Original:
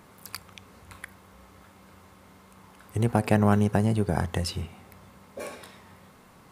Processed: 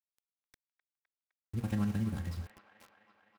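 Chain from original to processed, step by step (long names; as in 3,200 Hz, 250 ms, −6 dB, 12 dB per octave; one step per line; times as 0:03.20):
running median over 15 samples
guitar amp tone stack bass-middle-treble 6-0-2
comb filter 3.7 ms, depth 44%
four-comb reverb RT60 1.4 s, combs from 32 ms, DRR 7.5 dB
phase-vocoder stretch with locked phases 0.52×
centre clipping without the shift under −55.5 dBFS
on a send: delay with a band-pass on its return 256 ms, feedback 74%, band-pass 1,400 Hz, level −11.5 dB
on the sum: level +8 dB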